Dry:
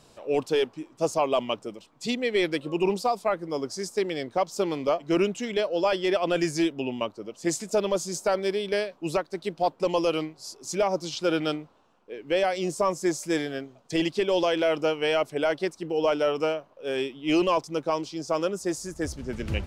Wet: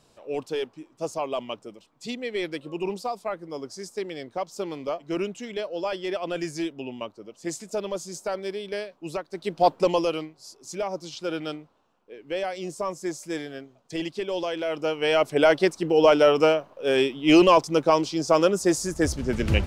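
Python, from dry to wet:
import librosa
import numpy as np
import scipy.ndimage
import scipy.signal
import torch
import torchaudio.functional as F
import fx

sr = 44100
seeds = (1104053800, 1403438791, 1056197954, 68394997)

y = fx.gain(x, sr, db=fx.line((9.22, -5.0), (9.71, 7.0), (10.28, -5.0), (14.65, -5.0), (15.4, 7.0)))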